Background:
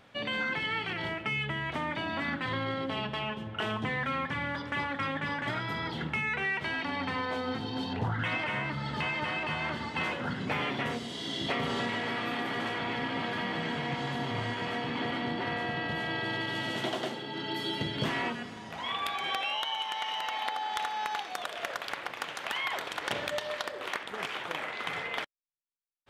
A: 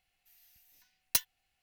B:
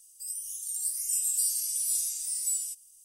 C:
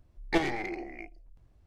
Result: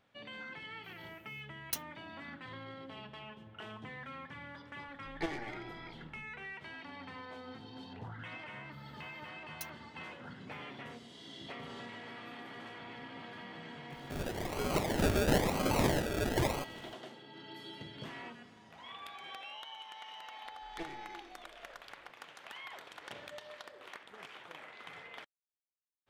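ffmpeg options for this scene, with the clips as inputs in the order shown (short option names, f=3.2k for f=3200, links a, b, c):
-filter_complex "[1:a]asplit=2[a][b];[3:a]asplit=2[c][d];[0:a]volume=-14.5dB[e];[2:a]acrusher=samples=34:mix=1:aa=0.000001:lfo=1:lforange=20.4:lforate=1[f];[a]atrim=end=1.62,asetpts=PTS-STARTPTS,volume=-9dB,afade=t=in:d=0.004:c=hsin,afade=t=out:st=1.616:d=0.004:c=hsin,adelay=580[g];[c]atrim=end=1.66,asetpts=PTS-STARTPTS,volume=-10.5dB,afade=t=in:d=0.004:c=hsin,afade=t=out:st=1.656:d=0.004:c=hsin,adelay=4880[h];[b]atrim=end=1.62,asetpts=PTS-STARTPTS,volume=-17.5dB,afade=t=in:d=0.004:c=hsin,afade=t=out:st=1.616:d=0.004:c=hsin,adelay=8460[i];[f]atrim=end=3.04,asetpts=PTS-STARTPTS,volume=-0.5dB,afade=t=in:d=0.004:c=hsin,afade=t=out:st=3.036:d=0.004:c=hsin,adelay=13900[j];[d]atrim=end=1.66,asetpts=PTS-STARTPTS,volume=-17.5dB,afade=t=in:d=0.004:c=hsin,afade=t=out:st=1.656:d=0.004:c=hsin,adelay=20450[k];[e][g][h][i][j][k]amix=inputs=6:normalize=0"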